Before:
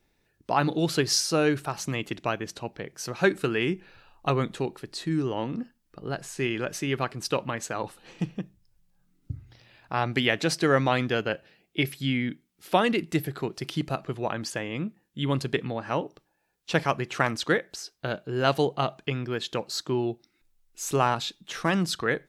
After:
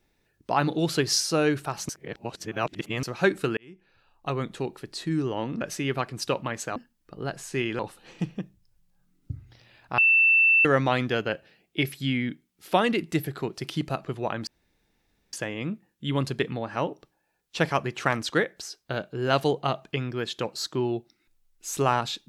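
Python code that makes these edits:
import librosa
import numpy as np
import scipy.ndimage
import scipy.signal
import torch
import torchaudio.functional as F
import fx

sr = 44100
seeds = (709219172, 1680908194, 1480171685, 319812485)

y = fx.edit(x, sr, fx.reverse_span(start_s=1.89, length_s=1.14),
    fx.fade_in_span(start_s=3.57, length_s=1.25),
    fx.move(start_s=5.61, length_s=1.03, to_s=7.79),
    fx.bleep(start_s=9.98, length_s=0.67, hz=2670.0, db=-15.5),
    fx.insert_room_tone(at_s=14.47, length_s=0.86), tone=tone)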